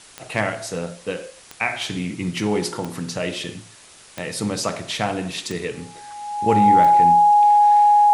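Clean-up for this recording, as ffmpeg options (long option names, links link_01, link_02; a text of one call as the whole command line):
ffmpeg -i in.wav -af "adeclick=threshold=4,bandreject=frequency=830:width=30,afwtdn=0.0063" out.wav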